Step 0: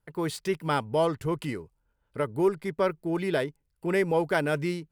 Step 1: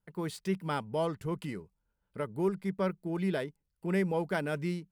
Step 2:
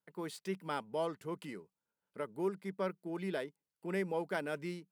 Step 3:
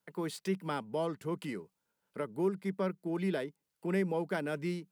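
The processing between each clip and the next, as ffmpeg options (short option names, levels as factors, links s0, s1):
-af "equalizer=f=190:t=o:w=0.25:g=12,volume=0.447"
-af "highpass=240,volume=0.631"
-filter_complex "[0:a]acrossover=split=310[s0][s1];[s1]acompressor=threshold=0.00251:ratio=1.5[s2];[s0][s2]amix=inputs=2:normalize=0,volume=2.37"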